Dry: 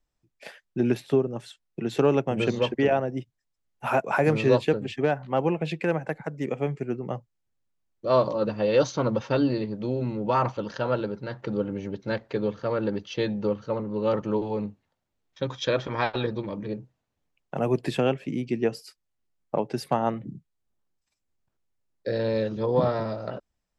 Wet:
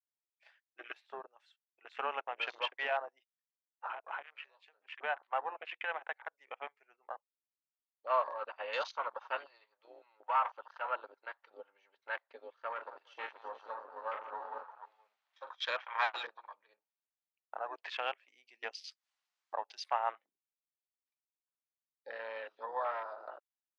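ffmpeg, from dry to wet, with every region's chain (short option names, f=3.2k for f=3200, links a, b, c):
-filter_complex "[0:a]asettb=1/sr,asplit=3[a][b][c];[a]atrim=end=3.864[d];[b]atrim=start=3.86:end=4.91,asetpts=PTS-STARTPTS,afade=t=in:d=0.004:c=qsin,afade=t=out:st=1.046:d=0.004:c=qsin,acompressor=threshold=-29dB:ratio=16:attack=3.2:release=140:knee=1:detection=peak,tremolo=f=180:d=0.462[e];[c]atrim=start=4.906[f];[d][e]acrossfade=d=0.004:c1=hsin:c2=qsin[g];[g][f]acrossfade=d=0.004:c1=qsin:c2=hsin,asettb=1/sr,asplit=3[h][i][j];[h]atrim=end=9.374[k];[i]atrim=start=9.37:end=10.84,asetpts=PTS-STARTPTS,afade=t=in:d=0.004:c=qsin,afade=t=out:st=1.466:d=0.004:c=qsin,aeval=exprs='if(lt(val(0),0),0.708*val(0),val(0))':c=same,equalizer=f=230:w=1.3:g=-7.5[l];[j]atrim=start=10.836[m];[k][l]acrossfade=d=0.004:c1=hsin:c2=qsin[n];[n][m]acrossfade=d=0.004:c1=qsin:c2=hsin,asettb=1/sr,asplit=3[o][p][q];[o]atrim=end=12.724[r];[p]atrim=start=12.72:end=15.52,asetpts=PTS-STARTPTS,afade=t=in:d=0.004:c=qsin,afade=t=out:st=2.796:d=0.004:c=qsin,aeval=exprs='if(lt(val(0),0),0.447*val(0),val(0))':c=same,acompressor=mode=upward:threshold=-35dB:ratio=2.5:attack=3.2:release=140:knee=2.83:detection=peak,aecho=1:1:44|138|178|346|478:0.398|0.106|0.266|0.299|0.398,atrim=end_sample=123480[s];[q]atrim=start=15.516[t];[r][s]acrossfade=d=0.004:c1=hsin:c2=qsin[u];[u][t]acrossfade=d=0.004:c1=qsin:c2=hsin,asettb=1/sr,asplit=3[v][w][x];[v]atrim=end=18.284[y];[w]atrim=start=18.28:end=20.29,asetpts=PTS-STARTPTS,afade=t=in:d=0.004:c=qsin,afade=t=out:st=2.006:d=0.004:c=qsin,bass=f=250:g=5,treble=f=4k:g=9,acompressor=mode=upward:threshold=-28dB:ratio=2.5:attack=3.2:release=140:knee=2.83:detection=peak[z];[x]atrim=start=20.286[aa];[y][z]acrossfade=d=0.004:c1=hsin:c2=qsin[ab];[ab][aa]acrossfade=d=0.004:c1=qsin:c2=hsin,highpass=f=830:w=0.5412,highpass=f=830:w=1.3066,afwtdn=0.01,lowpass=3.8k,volume=-2.5dB"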